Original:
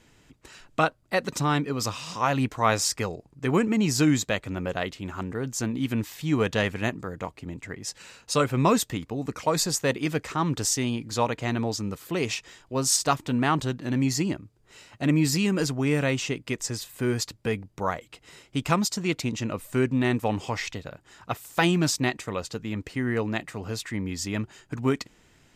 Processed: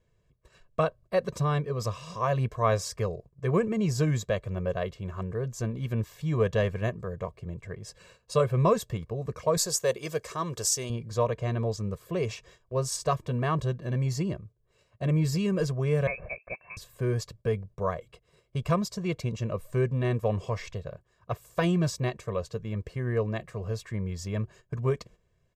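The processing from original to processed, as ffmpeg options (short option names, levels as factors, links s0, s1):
-filter_complex "[0:a]asettb=1/sr,asplit=3[s0][s1][s2];[s0]atrim=end=9.574[s3];[s1]atrim=start=9.57:end=10.9,asetpts=PTS-STARTPTS,afade=t=in:d=0.004:c=qsin,afade=t=out:st=1.326:d=0.004:c=qsin,bass=f=250:g=-10,treble=f=4000:g=11[s4];[s2]atrim=start=10.896[s5];[s3][s4]acrossfade=d=0.004:c1=hsin:c2=qsin[s6];[s6][s5]acrossfade=d=0.004:c1=qsin:c2=hsin,asettb=1/sr,asplit=3[s7][s8][s9];[s7]atrim=end=16.074[s10];[s8]atrim=start=16.07:end=16.77,asetpts=PTS-STARTPTS,afade=t=in:d=0.004:c=qsin,afade=t=out:st=0.696:d=0.004:c=qsin,lowpass=f=2300:t=q:w=0.5098,lowpass=f=2300:t=q:w=0.6013,lowpass=f=2300:t=q:w=0.9,lowpass=f=2300:t=q:w=2.563,afreqshift=-2700[s11];[s9]atrim=start=16.766[s12];[s10][s11]acrossfade=d=0.004:c1=hsin:c2=qsin[s13];[s13][s12]acrossfade=d=0.004:c1=qsin:c2=hsin,agate=range=0.282:threshold=0.00447:ratio=16:detection=peak,tiltshelf=f=1100:g=6.5,aecho=1:1:1.8:0.91,volume=0.422"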